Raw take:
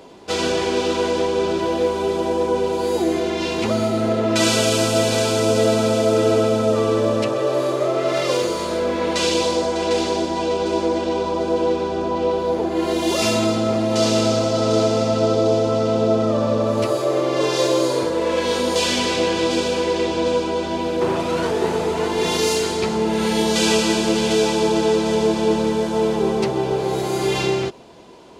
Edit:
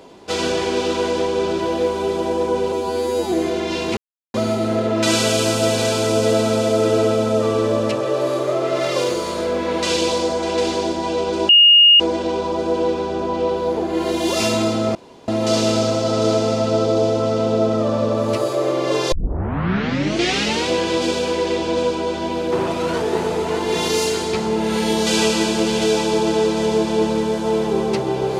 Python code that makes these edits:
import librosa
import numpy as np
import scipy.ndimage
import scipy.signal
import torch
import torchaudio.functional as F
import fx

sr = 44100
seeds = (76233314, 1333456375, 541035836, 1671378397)

y = fx.edit(x, sr, fx.stretch_span(start_s=2.72, length_s=0.3, factor=2.0),
    fx.insert_silence(at_s=3.67, length_s=0.37),
    fx.insert_tone(at_s=10.82, length_s=0.51, hz=2850.0, db=-6.5),
    fx.insert_room_tone(at_s=13.77, length_s=0.33),
    fx.tape_start(start_s=17.61, length_s=1.56), tone=tone)